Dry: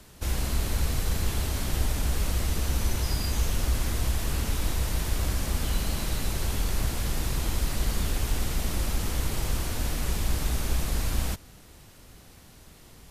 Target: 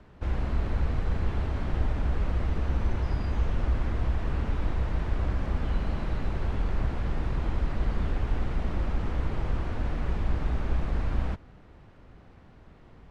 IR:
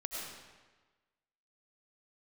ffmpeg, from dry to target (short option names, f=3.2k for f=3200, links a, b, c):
-af "lowpass=1.7k"